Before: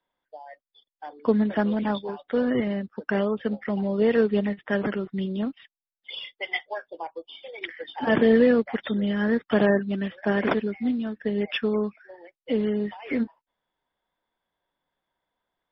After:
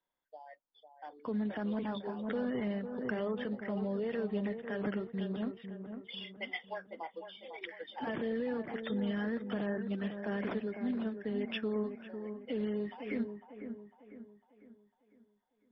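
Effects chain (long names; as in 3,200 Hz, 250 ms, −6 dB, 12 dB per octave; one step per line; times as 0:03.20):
brickwall limiter −19.5 dBFS, peak gain reduction 11.5 dB
delay with a low-pass on its return 501 ms, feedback 43%, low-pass 1,500 Hz, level −8 dB
0:02.16–0:03.48: background raised ahead of every attack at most 41 dB per second
level −8.5 dB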